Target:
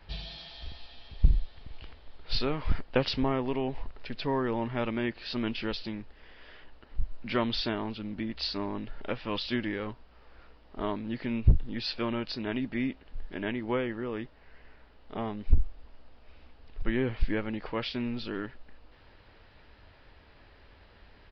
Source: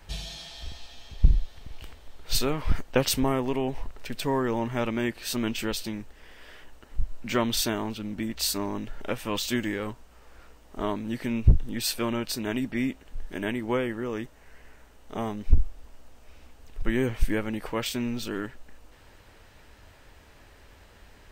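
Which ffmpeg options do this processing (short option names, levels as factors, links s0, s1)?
-af "aresample=11025,aresample=44100,volume=0.708"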